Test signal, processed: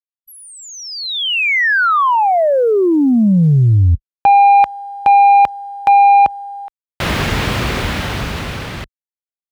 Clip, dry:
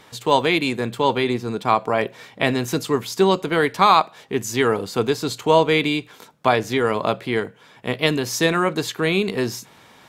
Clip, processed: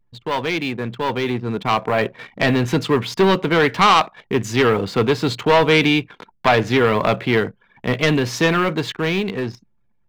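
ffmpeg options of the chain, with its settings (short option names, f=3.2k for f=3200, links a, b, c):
-af "highpass=f=41:w=0.5412,highpass=f=41:w=1.3066,bass=f=250:g=5,treble=f=4k:g=-14,asoftclip=type=tanh:threshold=-14dB,equalizer=f=3.5k:w=0.5:g=6.5,dynaudnorm=f=160:g=21:m=16dB,acrusher=bits=8:dc=4:mix=0:aa=0.000001,anlmdn=15.8,volume=-3dB"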